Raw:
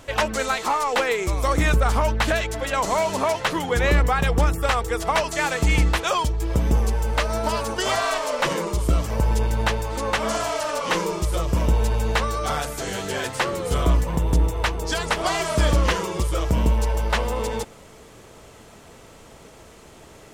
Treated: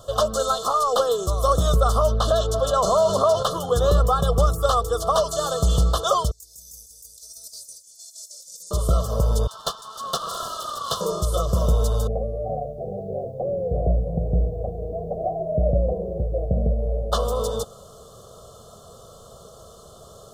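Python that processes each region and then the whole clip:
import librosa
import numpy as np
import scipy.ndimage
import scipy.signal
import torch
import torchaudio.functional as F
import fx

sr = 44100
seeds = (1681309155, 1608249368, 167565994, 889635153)

y = fx.chain(x, sr, fx.high_shelf(hz=8600.0, db=-10.0),
    fx.env_flatten(amount_pct=50), at=(2.11, 3.43))
y = fx.chain(y, sr, fx.cheby2_highpass(hz=2900.0, order=4, stop_db=40),
    fx.over_compress(threshold_db=-43.0, ratio=-0.5),
    fx.echo_single(ms=187, db=-12.5), at=(6.31, 8.71))
y = fx.chain(y, sr, fx.steep_highpass(hz=900.0, slope=48),
    fx.air_absorb(metres=53.0),
    fx.doppler_dist(depth_ms=0.57), at=(9.47, 11.01))
y = fx.chain(y, sr, fx.cheby_ripple(hz=770.0, ripple_db=3),
    fx.quant_dither(seeds[0], bits=12, dither='none'),
    fx.echo_single(ms=349, db=-16.0), at=(12.07, 17.12))
y = scipy.signal.sosfilt(scipy.signal.cheby1(3, 1.0, [1400.0, 3300.0], 'bandstop', fs=sr, output='sos'), y)
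y = fx.low_shelf(y, sr, hz=64.0, db=-8.5)
y = y + 0.81 * np.pad(y, (int(1.7 * sr / 1000.0), 0))[:len(y)]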